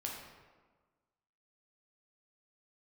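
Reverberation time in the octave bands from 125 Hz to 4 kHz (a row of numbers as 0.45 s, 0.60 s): 1.4 s, 1.5 s, 1.4 s, 1.4 s, 1.1 s, 0.85 s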